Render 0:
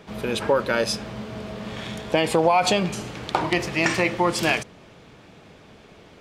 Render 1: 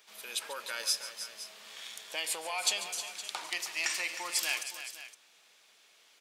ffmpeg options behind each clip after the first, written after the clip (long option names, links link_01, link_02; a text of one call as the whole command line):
ffmpeg -i in.wav -filter_complex "[0:a]highpass=frequency=430:poles=1,aderivative,asplit=2[link_01][link_02];[link_02]aecho=0:1:142|312|514:0.2|0.282|0.188[link_03];[link_01][link_03]amix=inputs=2:normalize=0" out.wav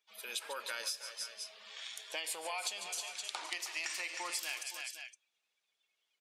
ffmpeg -i in.wav -af "afftdn=noise_reduction=23:noise_floor=-54,acompressor=threshold=-35dB:ratio=10" out.wav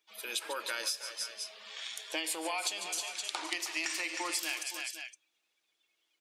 ffmpeg -i in.wav -af "equalizer=frequency=320:width_type=o:width=0.24:gain=14.5,volume=4dB" out.wav